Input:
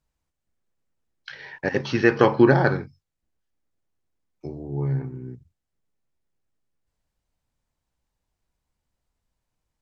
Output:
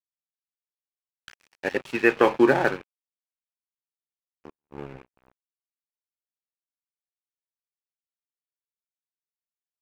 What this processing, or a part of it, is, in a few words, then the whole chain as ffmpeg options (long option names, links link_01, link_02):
pocket radio on a weak battery: -filter_complex "[0:a]highpass=280,lowpass=3500,aeval=exprs='sgn(val(0))*max(abs(val(0))-0.0188,0)':channel_layout=same,equalizer=frequency=2500:width_type=o:width=0.29:gain=7,asettb=1/sr,asplit=3[link_01][link_02][link_03];[link_01]atrim=end=4.504[link_04];[link_02]atrim=start=4.5:end=5.17,asetpts=PTS-STARTPTS,afade=type=in:duration=0.004:curve=qsin,afade=type=out:start_time=0.666:duration=0.004:curve=qsin,agate=range=-42dB:threshold=-45dB:ratio=16:detection=peak[link_05];[link_03]atrim=start=5.166[link_06];[link_04][link_05]acrossfade=duration=0.004:curve1=hsin:curve2=qsin[link_07];[link_07][link_06]acrossfade=duration=0.004:curve1=qsin:curve2=hsin"